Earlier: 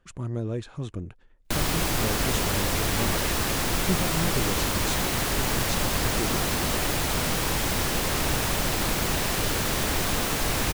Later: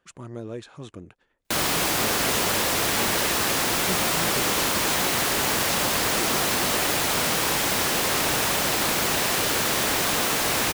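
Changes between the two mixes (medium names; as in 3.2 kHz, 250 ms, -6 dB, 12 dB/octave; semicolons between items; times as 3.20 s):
background +4.5 dB; master: add high-pass 340 Hz 6 dB/octave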